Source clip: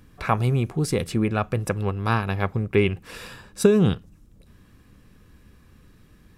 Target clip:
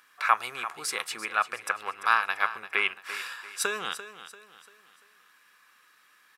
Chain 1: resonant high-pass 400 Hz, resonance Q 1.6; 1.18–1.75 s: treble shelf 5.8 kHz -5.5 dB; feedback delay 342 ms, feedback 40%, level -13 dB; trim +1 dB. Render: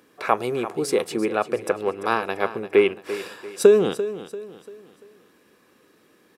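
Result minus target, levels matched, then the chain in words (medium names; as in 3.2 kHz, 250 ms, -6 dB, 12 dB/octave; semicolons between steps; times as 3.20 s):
500 Hz band +15.5 dB
resonant high-pass 1.3 kHz, resonance Q 1.6; 1.18–1.75 s: treble shelf 5.8 kHz -5.5 dB; feedback delay 342 ms, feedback 40%, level -13 dB; trim +1 dB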